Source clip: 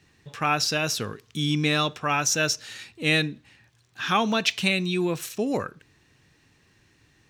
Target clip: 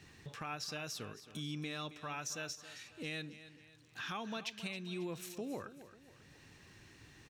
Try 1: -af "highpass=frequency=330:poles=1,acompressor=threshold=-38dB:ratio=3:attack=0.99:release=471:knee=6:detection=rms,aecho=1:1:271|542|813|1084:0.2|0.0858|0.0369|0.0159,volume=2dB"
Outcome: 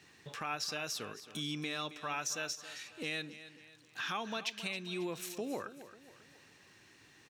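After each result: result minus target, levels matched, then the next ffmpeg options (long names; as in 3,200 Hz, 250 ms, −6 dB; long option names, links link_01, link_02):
downward compressor: peak gain reduction −5 dB; 250 Hz band −2.5 dB
-af "highpass=frequency=330:poles=1,acompressor=threshold=-45dB:ratio=3:attack=0.99:release=471:knee=6:detection=rms,aecho=1:1:271|542|813|1084:0.2|0.0858|0.0369|0.0159,volume=2dB"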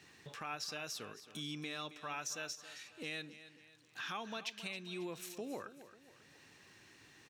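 250 Hz band −2.5 dB
-af "acompressor=threshold=-45dB:ratio=3:attack=0.99:release=471:knee=6:detection=rms,aecho=1:1:271|542|813|1084:0.2|0.0858|0.0369|0.0159,volume=2dB"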